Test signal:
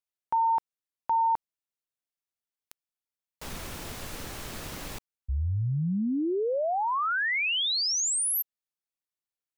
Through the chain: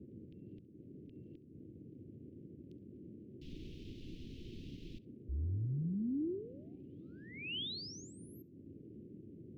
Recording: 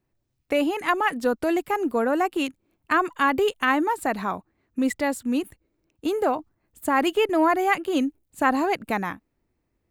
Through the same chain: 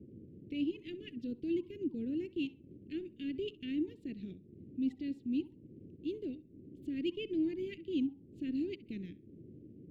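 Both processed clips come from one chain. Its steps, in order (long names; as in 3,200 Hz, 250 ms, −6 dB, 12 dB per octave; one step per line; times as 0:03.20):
noise in a band 85–780 Hz −40 dBFS
transient designer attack −4 dB, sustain −8 dB
elliptic band-stop filter 340–2,900 Hz, stop band 80 dB
high-frequency loss of the air 270 metres
on a send: tape delay 66 ms, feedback 27%, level −18 dB, low-pass 3,700 Hz
on the sum: level −7.5 dB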